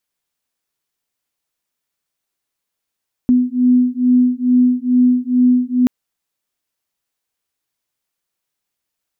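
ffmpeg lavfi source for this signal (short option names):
-f lavfi -i "aevalsrc='0.211*(sin(2*PI*248*t)+sin(2*PI*250.3*t))':d=2.58:s=44100"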